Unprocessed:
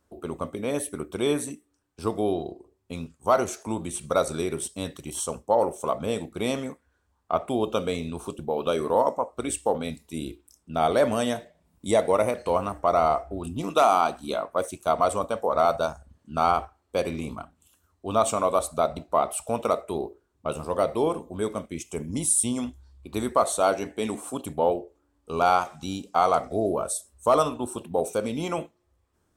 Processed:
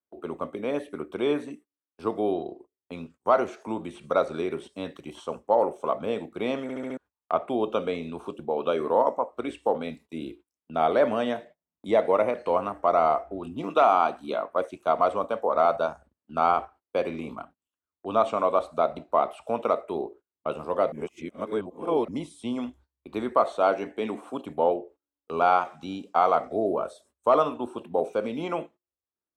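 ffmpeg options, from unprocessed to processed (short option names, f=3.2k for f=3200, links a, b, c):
-filter_complex "[0:a]asplit=8[a][b][c][d][e][f][g][h];[a]atrim=end=6.692[i];[b]atrim=start=6.618:end=6.692[j];[c]atrim=start=6.618:end=6.692[k];[d]atrim=start=6.618:end=6.692[l];[e]atrim=start=6.618:end=6.692[m];[f]atrim=start=6.968:end=20.922[n];[g]atrim=start=20.918:end=22.082,asetpts=PTS-STARTPTS,areverse[o];[h]atrim=start=22.078[p];[i][j]acrossfade=d=0.004:c1=hsin:c2=hsin[q];[q][k]acrossfade=d=0.004:c1=hsin:c2=hsin[r];[r][l]acrossfade=d=0.004:c1=hsin:c2=hsin[s];[s][m]acrossfade=d=0.004:c1=hsin:c2=hsin[t];[t][n]acrossfade=d=0.004:c1=hsin:c2=hsin[u];[u][o]acrossfade=d=0.004:c1=hsin:c2=hsin[v];[v][p]acrossfade=d=0.004:c1=hsin:c2=hsin,agate=range=-25dB:threshold=-46dB:ratio=16:detection=peak,acrossover=split=4900[w][x];[x]acompressor=threshold=-51dB:ratio=4:attack=1:release=60[y];[w][y]amix=inputs=2:normalize=0,acrossover=split=190 3400:gain=0.224 1 0.251[z][aa][ab];[z][aa][ab]amix=inputs=3:normalize=0"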